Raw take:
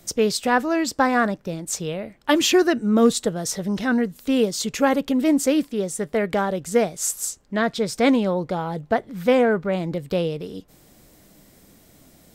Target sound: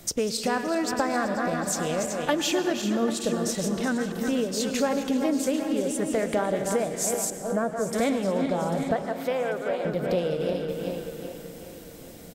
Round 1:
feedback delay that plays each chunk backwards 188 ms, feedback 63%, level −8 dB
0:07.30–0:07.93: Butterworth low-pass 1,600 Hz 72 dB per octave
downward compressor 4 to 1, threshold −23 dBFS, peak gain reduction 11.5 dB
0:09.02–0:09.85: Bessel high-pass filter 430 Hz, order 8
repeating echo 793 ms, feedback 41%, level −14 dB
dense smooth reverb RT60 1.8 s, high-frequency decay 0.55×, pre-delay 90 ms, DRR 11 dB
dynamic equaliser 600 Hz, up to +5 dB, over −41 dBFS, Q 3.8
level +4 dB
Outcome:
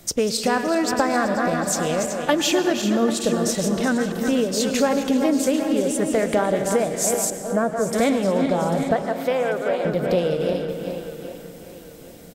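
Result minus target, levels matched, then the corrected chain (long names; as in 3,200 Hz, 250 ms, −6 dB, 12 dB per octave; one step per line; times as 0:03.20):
downward compressor: peak gain reduction −5.5 dB
feedback delay that plays each chunk backwards 188 ms, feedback 63%, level −8 dB
0:07.30–0:07.93: Butterworth low-pass 1,600 Hz 72 dB per octave
downward compressor 4 to 1, threshold −30 dBFS, peak gain reduction 16.5 dB
0:09.02–0:09.85: Bessel high-pass filter 430 Hz, order 8
repeating echo 793 ms, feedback 41%, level −14 dB
dense smooth reverb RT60 1.8 s, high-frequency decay 0.55×, pre-delay 90 ms, DRR 11 dB
dynamic equaliser 600 Hz, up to +5 dB, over −41 dBFS, Q 3.8
level +4 dB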